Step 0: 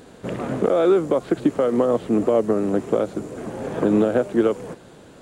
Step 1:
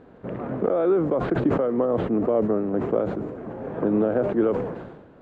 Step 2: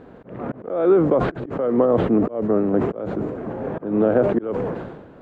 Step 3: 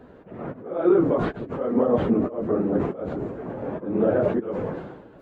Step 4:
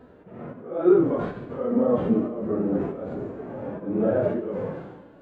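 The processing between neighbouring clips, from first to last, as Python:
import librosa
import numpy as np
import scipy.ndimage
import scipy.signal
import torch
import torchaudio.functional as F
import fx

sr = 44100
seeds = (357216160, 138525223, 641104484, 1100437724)

y1 = scipy.signal.sosfilt(scipy.signal.butter(2, 1600.0, 'lowpass', fs=sr, output='sos'), x)
y1 = fx.sustainer(y1, sr, db_per_s=50.0)
y1 = y1 * 10.0 ** (-4.0 / 20.0)
y2 = fx.auto_swell(y1, sr, attack_ms=296.0)
y2 = y2 * 10.0 ** (5.5 / 20.0)
y3 = fx.phase_scramble(y2, sr, seeds[0], window_ms=50)
y3 = y3 * 10.0 ** (-3.5 / 20.0)
y4 = fx.wow_flutter(y3, sr, seeds[1], rate_hz=2.1, depth_cents=24.0)
y4 = fx.rev_schroeder(y4, sr, rt60_s=0.88, comb_ms=30, drr_db=12.5)
y4 = fx.hpss(y4, sr, part='percussive', gain_db=-16)
y4 = y4 * 10.0 ** (1.5 / 20.0)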